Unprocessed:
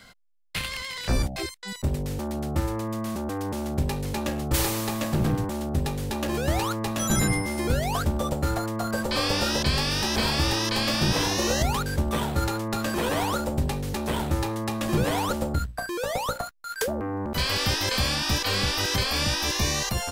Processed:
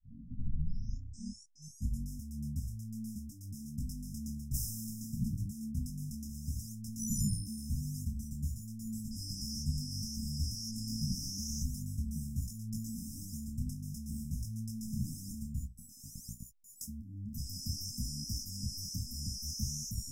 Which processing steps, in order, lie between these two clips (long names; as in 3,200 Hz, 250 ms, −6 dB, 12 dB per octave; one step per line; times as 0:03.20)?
turntable start at the beginning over 2.11 s
linear-phase brick-wall band-stop 270–5,000 Hz
micro pitch shift up and down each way 19 cents
level −6 dB